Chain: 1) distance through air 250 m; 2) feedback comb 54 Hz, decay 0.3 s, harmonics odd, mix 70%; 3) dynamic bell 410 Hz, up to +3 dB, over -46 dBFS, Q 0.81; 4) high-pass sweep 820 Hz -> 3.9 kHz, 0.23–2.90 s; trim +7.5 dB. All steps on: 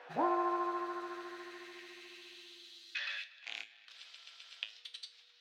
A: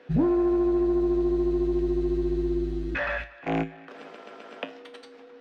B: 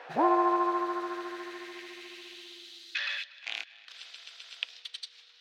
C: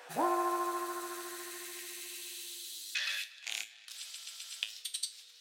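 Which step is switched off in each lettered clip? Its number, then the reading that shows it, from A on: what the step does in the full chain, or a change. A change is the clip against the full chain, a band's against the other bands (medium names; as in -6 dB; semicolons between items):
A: 4, 4 kHz band -16.5 dB; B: 2, momentary loudness spread change +1 LU; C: 1, 8 kHz band +19.5 dB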